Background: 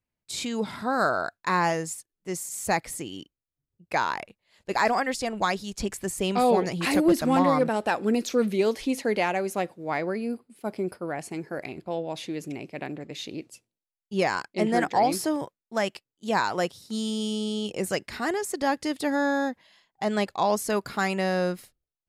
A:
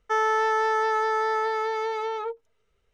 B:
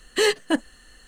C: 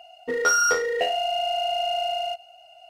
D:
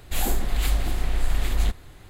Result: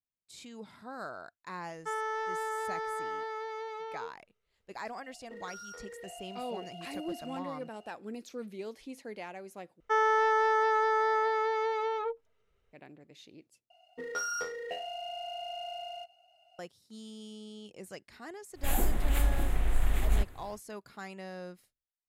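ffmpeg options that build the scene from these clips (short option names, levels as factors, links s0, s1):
-filter_complex "[1:a]asplit=2[s0][s1];[3:a]asplit=2[s2][s3];[0:a]volume=0.133[s4];[s2]acompressor=threshold=0.0224:ratio=6:attack=3.2:release=140:knee=1:detection=peak[s5];[s1]highshelf=f=5200:g=-7.5[s6];[s3]equalizer=f=190:w=2.6:g=6.5[s7];[4:a]equalizer=f=4700:t=o:w=0.84:g=-11.5[s8];[s4]asplit=3[s9][s10][s11];[s9]atrim=end=9.804[s12];[s6]atrim=end=2.93,asetpts=PTS-STARTPTS,volume=0.75[s13];[s10]atrim=start=12.726:end=13.704[s14];[s7]atrim=end=2.89,asetpts=PTS-STARTPTS,volume=0.188[s15];[s11]atrim=start=16.586[s16];[s0]atrim=end=2.93,asetpts=PTS-STARTPTS,volume=0.266,afade=t=in:d=0.004:c=hsin,afade=t=out:st=2.926:d=0.004:c=hsin,adelay=1760[s17];[s5]atrim=end=2.89,asetpts=PTS-STARTPTS,volume=0.237,afade=t=in:d=0.004:c=hsin,afade=t=out:st=2.886:d=0.004:c=hsin,adelay=5030[s18];[s8]atrim=end=2.09,asetpts=PTS-STARTPTS,volume=0.631,afade=t=in:d=0.1,afade=t=out:st=1.99:d=0.1,adelay=18520[s19];[s12][s13]acrossfade=d=0.004:c1=hsin:c2=hsin[s20];[s20][s14]acrossfade=d=0.004:c1=hsin:c2=hsin[s21];[s21][s15]acrossfade=d=0.004:c1=hsin:c2=hsin[s22];[s22][s16]acrossfade=d=0.004:c1=hsin:c2=hsin[s23];[s23][s17][s18][s19]amix=inputs=4:normalize=0"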